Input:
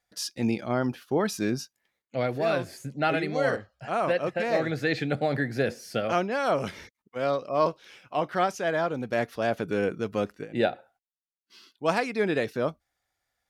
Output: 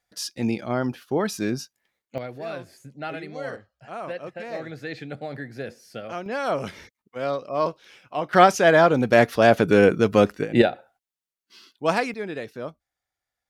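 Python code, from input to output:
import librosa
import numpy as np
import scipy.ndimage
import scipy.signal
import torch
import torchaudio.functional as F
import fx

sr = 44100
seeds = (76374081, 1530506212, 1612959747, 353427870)

y = fx.gain(x, sr, db=fx.steps((0.0, 1.5), (2.18, -7.5), (6.26, 0.0), (8.33, 11.0), (10.62, 3.0), (12.14, -6.0)))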